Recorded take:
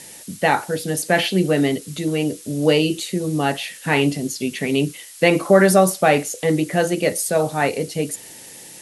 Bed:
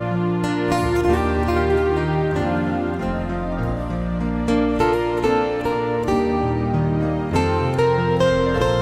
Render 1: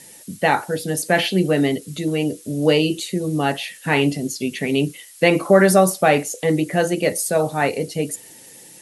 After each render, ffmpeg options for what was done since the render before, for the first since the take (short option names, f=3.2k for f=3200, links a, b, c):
-af "afftdn=nr=6:nf=-41"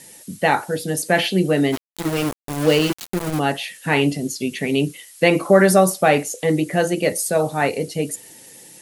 -filter_complex "[0:a]asplit=3[a][b][c];[a]afade=t=out:st=1.72:d=0.02[d];[b]aeval=exprs='val(0)*gte(abs(val(0)),0.0841)':c=same,afade=t=in:st=1.72:d=0.02,afade=t=out:st=3.38:d=0.02[e];[c]afade=t=in:st=3.38:d=0.02[f];[d][e][f]amix=inputs=3:normalize=0"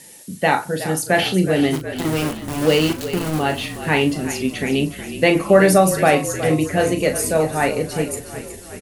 -filter_complex "[0:a]asplit=2[a][b];[b]adelay=38,volume=-9dB[c];[a][c]amix=inputs=2:normalize=0,asplit=8[d][e][f][g][h][i][j][k];[e]adelay=368,afreqshift=-33,volume=-12dB[l];[f]adelay=736,afreqshift=-66,volume=-16.4dB[m];[g]adelay=1104,afreqshift=-99,volume=-20.9dB[n];[h]adelay=1472,afreqshift=-132,volume=-25.3dB[o];[i]adelay=1840,afreqshift=-165,volume=-29.7dB[p];[j]adelay=2208,afreqshift=-198,volume=-34.2dB[q];[k]adelay=2576,afreqshift=-231,volume=-38.6dB[r];[d][l][m][n][o][p][q][r]amix=inputs=8:normalize=0"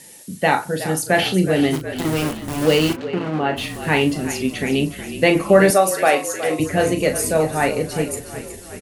-filter_complex "[0:a]asplit=3[a][b][c];[a]afade=t=out:st=2.95:d=0.02[d];[b]highpass=150,lowpass=2.5k,afade=t=in:st=2.95:d=0.02,afade=t=out:st=3.56:d=0.02[e];[c]afade=t=in:st=3.56:d=0.02[f];[d][e][f]amix=inputs=3:normalize=0,asettb=1/sr,asplit=3[g][h][i];[g]atrim=end=5.704[j];[h]atrim=start=5.7:end=6.6,asetpts=PTS-STARTPTS,afade=t=in:d=0.004:c=qsin,afade=t=out:st=0.896:d=0.004:c=qsin,highpass=400[k];[i]atrim=start=6.596[l];[j][k]acrossfade=d=0.004:c1=hsin:c2=qsin[m];[m][l]acrossfade=d=0.004:c1=qsin:c2=hsin"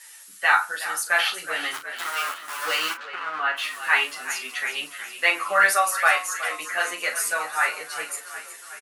-filter_complex "[0:a]highpass=f=1.3k:t=q:w=3.3,asplit=2[a][b];[b]adelay=10.6,afreqshift=-0.62[c];[a][c]amix=inputs=2:normalize=1"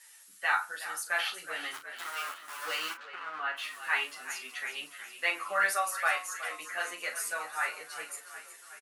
-af "volume=-9.5dB"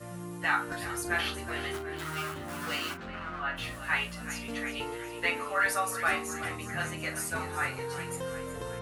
-filter_complex "[1:a]volume=-20dB[a];[0:a][a]amix=inputs=2:normalize=0"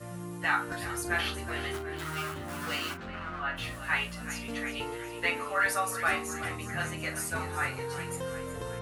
-af "equalizer=f=88:t=o:w=1:g=3.5"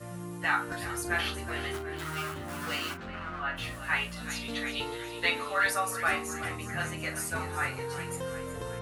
-filter_complex "[0:a]asettb=1/sr,asplit=3[a][b][c];[a]atrim=end=4.164[d];[b]atrim=start=4.16:end=5.7,asetpts=PTS-STARTPTS,afade=t=in:d=0.004:c=qsin,afade=t=out:st=1.536:d=0.004:c=qsin,equalizer=f=3.8k:w=3.6:g=13.5[e];[c]atrim=start=5.696[f];[d][e]acrossfade=d=0.004:c1=hsin:c2=qsin[g];[g][f]acrossfade=d=0.004:c1=qsin:c2=hsin"